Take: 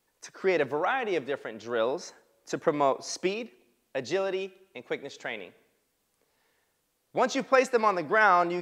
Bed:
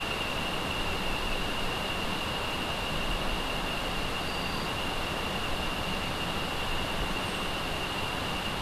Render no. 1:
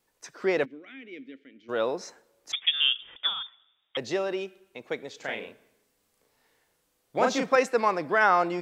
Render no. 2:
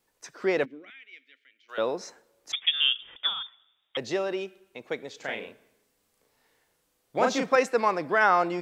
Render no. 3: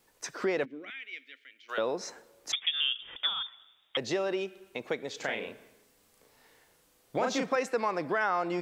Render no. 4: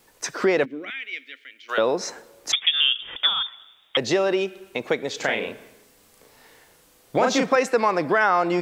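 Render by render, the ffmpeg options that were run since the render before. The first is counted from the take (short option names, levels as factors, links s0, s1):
-filter_complex "[0:a]asplit=3[s0][s1][s2];[s0]afade=t=out:st=0.64:d=0.02[s3];[s1]asplit=3[s4][s5][s6];[s4]bandpass=f=270:t=q:w=8,volume=1[s7];[s5]bandpass=f=2290:t=q:w=8,volume=0.501[s8];[s6]bandpass=f=3010:t=q:w=8,volume=0.355[s9];[s7][s8][s9]amix=inputs=3:normalize=0,afade=t=in:st=0.64:d=0.02,afade=t=out:st=1.68:d=0.02[s10];[s2]afade=t=in:st=1.68:d=0.02[s11];[s3][s10][s11]amix=inputs=3:normalize=0,asettb=1/sr,asplit=3[s12][s13][s14];[s12]atrim=end=2.524[s15];[s13]atrim=start=2.52:end=3.97,asetpts=PTS-STARTPTS,afade=t=in:d=0.004:c=qsin,afade=t=out:st=1.446:d=0.004:c=qsin,lowpass=f=3200:t=q:w=0.5098,lowpass=f=3200:t=q:w=0.6013,lowpass=f=3200:t=q:w=0.9,lowpass=f=3200:t=q:w=2.563,afreqshift=-3800[s16];[s14]atrim=start=3.966[s17];[s15][s16]acrossfade=d=0.004:c1=hsin:c2=qsin[s18];[s18][s17]acrossfade=d=0.004:c1=qsin:c2=hsin,asettb=1/sr,asplit=3[s19][s20][s21];[s19]atrim=end=5.174[s22];[s20]atrim=start=5.17:end=7.56,asetpts=PTS-STARTPTS,afade=t=in:d=0.004:c=qsin,afade=t=out:st=2.386:d=0.004:c=qsin,asplit=2[s23][s24];[s24]adelay=36,volume=0.794[s25];[s23][s25]amix=inputs=2:normalize=0,atrim=end_sample=105399[s26];[s21]atrim=start=7.556[s27];[s22][s26]acrossfade=d=0.004:c1=hsin:c2=qsin[s28];[s28][s27]acrossfade=d=0.004:c1=qsin:c2=hsin"
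-filter_complex "[0:a]asettb=1/sr,asplit=3[s0][s1][s2];[s0]atrim=end=0.904[s3];[s1]atrim=start=0.9:end=1.78,asetpts=PTS-STARTPTS,afade=t=in:d=0.004:c=qsin,afade=t=out:st=0.876:d=0.004:c=qsin,highpass=1500[s4];[s2]atrim=start=1.776[s5];[s3][s4]acrossfade=d=0.004:c1=hsin:c2=qsin[s6];[s6][s5]acrossfade=d=0.004:c1=qsin:c2=hsin"
-filter_complex "[0:a]asplit=2[s0][s1];[s1]alimiter=limit=0.119:level=0:latency=1:release=86,volume=1.12[s2];[s0][s2]amix=inputs=2:normalize=0,acompressor=threshold=0.02:ratio=2"
-af "volume=2.99"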